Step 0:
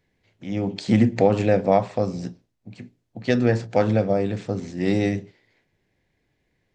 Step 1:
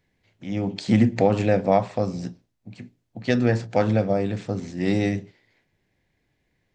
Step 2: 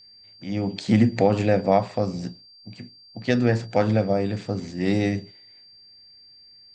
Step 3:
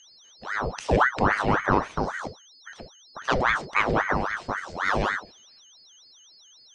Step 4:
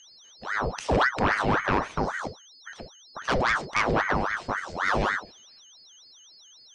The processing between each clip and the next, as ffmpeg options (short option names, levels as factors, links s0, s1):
-af "equalizer=f=430:t=o:w=0.77:g=-2.5"
-af "aeval=exprs='val(0)+0.00398*sin(2*PI*4700*n/s)':c=same"
-af "aeval=exprs='val(0)*sin(2*PI*1000*n/s+1000*0.75/3.7*sin(2*PI*3.7*n/s))':c=same"
-af "aeval=exprs='0.473*sin(PI/2*2*val(0)/0.473)':c=same,volume=0.355"